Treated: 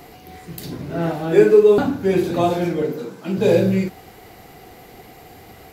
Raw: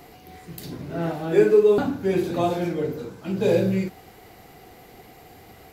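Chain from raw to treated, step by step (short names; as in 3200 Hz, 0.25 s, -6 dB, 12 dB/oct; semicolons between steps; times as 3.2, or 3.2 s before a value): 2.82–3.38 HPF 150 Hz 24 dB/oct; gain +4.5 dB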